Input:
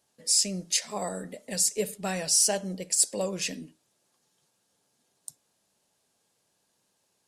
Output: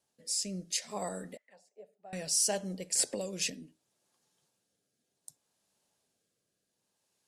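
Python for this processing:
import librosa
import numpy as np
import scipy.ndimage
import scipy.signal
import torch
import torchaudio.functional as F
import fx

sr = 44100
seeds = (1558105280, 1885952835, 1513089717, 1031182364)

y = fx.auto_wah(x, sr, base_hz=720.0, top_hz=2100.0, q=5.6, full_db=-29.5, direction='down', at=(1.37, 2.13))
y = fx.rotary(y, sr, hz=0.65)
y = fx.band_squash(y, sr, depth_pct=100, at=(2.95, 3.5))
y = F.gain(torch.from_numpy(y), -4.0).numpy()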